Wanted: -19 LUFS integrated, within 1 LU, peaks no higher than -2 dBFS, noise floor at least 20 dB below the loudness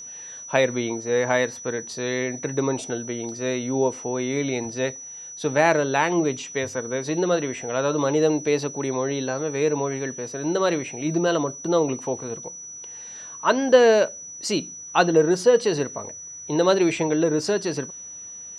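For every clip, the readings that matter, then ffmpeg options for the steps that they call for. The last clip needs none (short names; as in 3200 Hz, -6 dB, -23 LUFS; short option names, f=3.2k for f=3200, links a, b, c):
steady tone 5900 Hz; tone level -36 dBFS; loudness -23.0 LUFS; peak -3.5 dBFS; loudness target -19.0 LUFS
-> -af "bandreject=f=5.9k:w=30"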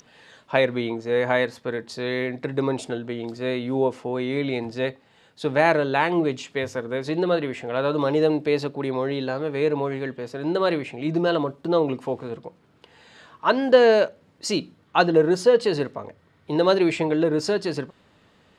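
steady tone none; loudness -23.5 LUFS; peak -3.5 dBFS; loudness target -19.0 LUFS
-> -af "volume=4.5dB,alimiter=limit=-2dB:level=0:latency=1"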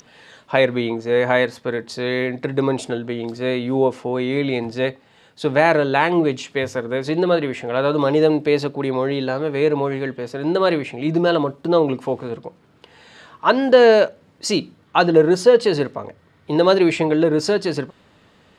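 loudness -19.0 LUFS; peak -2.0 dBFS; noise floor -55 dBFS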